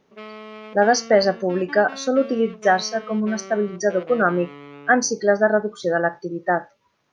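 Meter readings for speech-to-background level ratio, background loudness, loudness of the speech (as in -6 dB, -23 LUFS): 18.0 dB, -39.0 LUFS, -21.0 LUFS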